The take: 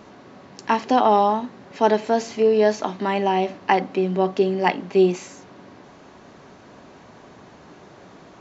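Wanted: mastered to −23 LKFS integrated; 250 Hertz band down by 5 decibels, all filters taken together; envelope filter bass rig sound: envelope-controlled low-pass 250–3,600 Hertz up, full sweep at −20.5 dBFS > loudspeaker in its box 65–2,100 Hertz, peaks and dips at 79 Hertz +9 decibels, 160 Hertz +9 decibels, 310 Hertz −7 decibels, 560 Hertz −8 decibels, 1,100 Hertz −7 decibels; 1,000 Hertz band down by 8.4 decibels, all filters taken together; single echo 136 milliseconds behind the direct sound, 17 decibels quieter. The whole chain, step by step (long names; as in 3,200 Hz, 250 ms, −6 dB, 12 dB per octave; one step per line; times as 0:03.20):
parametric band 250 Hz −8 dB
parametric band 1,000 Hz −7.5 dB
single-tap delay 136 ms −17 dB
envelope-controlled low-pass 250–3,600 Hz up, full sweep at −20.5 dBFS
loudspeaker in its box 65–2,100 Hz, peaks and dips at 79 Hz +9 dB, 160 Hz +9 dB, 310 Hz −7 dB, 560 Hz −8 dB, 1,100 Hz −7 dB
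level +3.5 dB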